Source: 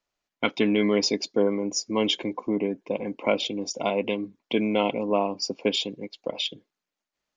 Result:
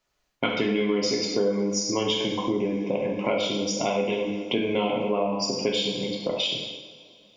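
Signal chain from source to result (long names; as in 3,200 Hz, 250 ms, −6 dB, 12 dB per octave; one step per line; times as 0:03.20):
low-shelf EQ 120 Hz +6.5 dB
coupled-rooms reverb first 0.89 s, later 3.1 s, from −22 dB, DRR −2 dB
downward compressor 3 to 1, threshold −29 dBFS, peak gain reduction 12.5 dB
level +4.5 dB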